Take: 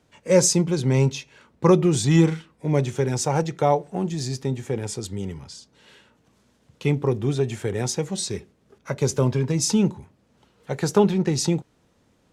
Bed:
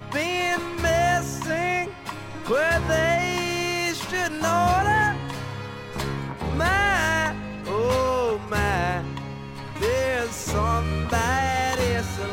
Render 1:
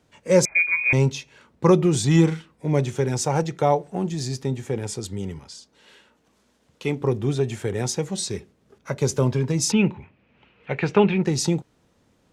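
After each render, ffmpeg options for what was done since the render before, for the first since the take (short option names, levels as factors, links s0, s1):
-filter_complex "[0:a]asettb=1/sr,asplit=3[s0][s1][s2];[s0]atrim=end=0.454[s3];[s1]atrim=start=0.45:end=0.93,asetpts=PTS-STARTPTS,afade=t=in:d=0.004:c=qsin,afade=t=out:st=0.476:d=0.004:c=qsin,lowpass=f=2200:t=q:w=0.5098,lowpass=f=2200:t=q:w=0.6013,lowpass=f=2200:t=q:w=0.9,lowpass=f=2200:t=q:w=2.563,afreqshift=-2600[s4];[s2]atrim=start=0.926[s5];[s3][s4]acrossfade=d=0.004:c1=hsin:c2=qsin[s6];[s6][s5]acrossfade=d=0.004:c1=qsin:c2=hsin,asettb=1/sr,asplit=3[s7][s8][s9];[s7]atrim=end=5.394[s10];[s8]atrim=start=5.39:end=7.01,asetpts=PTS-STARTPTS,afade=t=in:d=0.004:c=qsin,afade=t=out:st=1.616:d=0.004:c=qsin,equalizer=f=110:t=o:w=1.3:g=-10.5[s11];[s9]atrim=start=7.006[s12];[s10][s11]acrossfade=d=0.004:c1=hsin:c2=qsin[s13];[s13][s12]acrossfade=d=0.004:c1=qsin:c2=hsin,asettb=1/sr,asplit=3[s14][s15][s16];[s14]atrim=end=9.724[s17];[s15]atrim=start=9.72:end=11.23,asetpts=PTS-STARTPTS,afade=t=in:d=0.004:c=qsin,afade=t=out:st=1.506:d=0.004:c=qsin,lowpass=f=2500:t=q:w=5[s18];[s16]atrim=start=11.226[s19];[s17][s18]acrossfade=d=0.004:c1=hsin:c2=qsin[s20];[s20][s19]acrossfade=d=0.004:c1=qsin:c2=hsin"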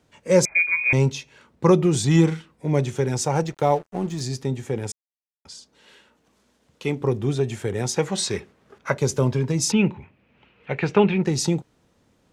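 -filter_complex "[0:a]asettb=1/sr,asplit=3[s0][s1][s2];[s0]atrim=end=3.474[s3];[s1]atrim=start=3.47:end=4.21,asetpts=PTS-STARTPTS,afade=t=in:d=0.004:c=qsin,afade=t=out:st=0.736:d=0.004:c=qsin,aeval=exprs='sgn(val(0))*max(abs(val(0))-0.00794,0)':c=same[s4];[s2]atrim=start=4.206[s5];[s3][s4]acrossfade=d=0.004:c1=hsin:c2=qsin[s6];[s6][s5]acrossfade=d=0.004:c1=qsin:c2=hsin,asettb=1/sr,asplit=3[s7][s8][s9];[s7]atrim=end=7.964[s10];[s8]atrim=start=7.96:end=8.98,asetpts=PTS-STARTPTS,afade=t=in:d=0.004:c=qsin,afade=t=out:st=1.016:d=0.004:c=qsin,equalizer=f=1400:w=0.42:g=10[s11];[s9]atrim=start=8.976[s12];[s10][s11]acrossfade=d=0.004:c1=hsin:c2=qsin[s13];[s13][s12]acrossfade=d=0.004:c1=qsin:c2=hsin,asplit=3[s14][s15][s16];[s14]atrim=end=4.92,asetpts=PTS-STARTPTS,afade=t=out:st=4.916:d=0.004:c=hsin[s17];[s15]atrim=start=4.92:end=5.45,asetpts=PTS-STARTPTS,volume=0[s18];[s16]atrim=start=5.45,asetpts=PTS-STARTPTS,afade=t=in:d=0.004:c=hsin[s19];[s17][s18][s19]concat=n=3:v=0:a=1"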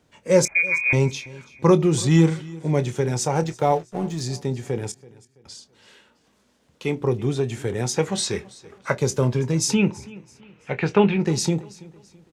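-filter_complex "[0:a]asplit=2[s0][s1];[s1]adelay=25,volume=0.224[s2];[s0][s2]amix=inputs=2:normalize=0,aecho=1:1:331|662|993:0.0891|0.0321|0.0116"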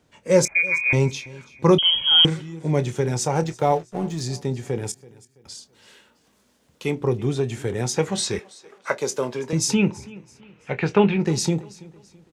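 -filter_complex "[0:a]asettb=1/sr,asplit=3[s0][s1][s2];[s0]atrim=end=1.784[s3];[s1]atrim=start=1.78:end=2.25,asetpts=PTS-STARTPTS,afade=t=in:d=0.004:c=qsin,afade=t=out:st=0.466:d=0.004:c=qsin,lowpass=f=2900:t=q:w=0.5098,lowpass=f=2900:t=q:w=0.6013,lowpass=f=2900:t=q:w=0.9,lowpass=f=2900:t=q:w=2.563,afreqshift=-3400[s4];[s2]atrim=start=2.246[s5];[s3][s4]acrossfade=d=0.004:c1=hsin:c2=qsin[s6];[s6][s5]acrossfade=d=0.004:c1=qsin:c2=hsin,asettb=1/sr,asplit=3[s7][s8][s9];[s7]atrim=end=4.854[s10];[s8]atrim=start=4.85:end=6.91,asetpts=PTS-STARTPTS,afade=t=in:d=0.004:c=qsin,afade=t=out:st=2.056:d=0.004:c=qsin,highshelf=f=10000:g=10.5[s11];[s9]atrim=start=6.906[s12];[s10][s11]acrossfade=d=0.004:c1=hsin:c2=qsin[s13];[s13][s12]acrossfade=d=0.004:c1=qsin:c2=hsin,asettb=1/sr,asplit=3[s14][s15][s16];[s14]atrim=end=8.394[s17];[s15]atrim=start=8.39:end=9.53,asetpts=PTS-STARTPTS,afade=t=in:d=0.004:c=qsin,afade=t=out:st=1.136:d=0.004:c=qsin,highpass=350[s18];[s16]atrim=start=9.526[s19];[s17][s18]acrossfade=d=0.004:c1=hsin:c2=qsin[s20];[s20][s19]acrossfade=d=0.004:c1=qsin:c2=hsin"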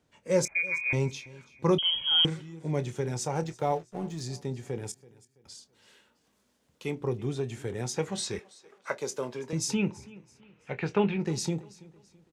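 -af "volume=0.376"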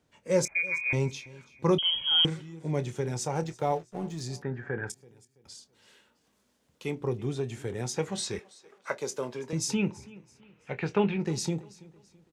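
-filter_complex "[0:a]asettb=1/sr,asplit=3[s0][s1][s2];[s0]atrim=end=4.424[s3];[s1]atrim=start=4.42:end=4.9,asetpts=PTS-STARTPTS,afade=t=in:d=0.004:c=qsin,afade=t=out:st=0.476:d=0.004:c=qsin,lowpass=f=1600:t=q:w=13[s4];[s2]atrim=start=4.896[s5];[s3][s4]acrossfade=d=0.004:c1=hsin:c2=qsin[s6];[s6][s5]acrossfade=d=0.004:c1=qsin:c2=hsin"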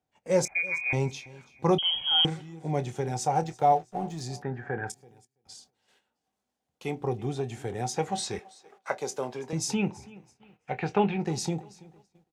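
-af "agate=range=0.2:threshold=0.00141:ratio=16:detection=peak,equalizer=f=760:t=o:w=0.23:g=15"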